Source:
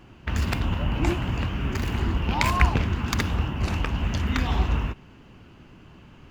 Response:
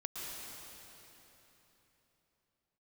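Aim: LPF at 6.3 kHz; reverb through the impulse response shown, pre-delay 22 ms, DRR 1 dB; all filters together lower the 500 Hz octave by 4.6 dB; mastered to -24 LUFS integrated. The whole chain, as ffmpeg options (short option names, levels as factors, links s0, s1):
-filter_complex "[0:a]lowpass=6300,equalizer=f=500:t=o:g=-7,asplit=2[s0][s1];[1:a]atrim=start_sample=2205,adelay=22[s2];[s1][s2]afir=irnorm=-1:irlink=0,volume=0.794[s3];[s0][s3]amix=inputs=2:normalize=0"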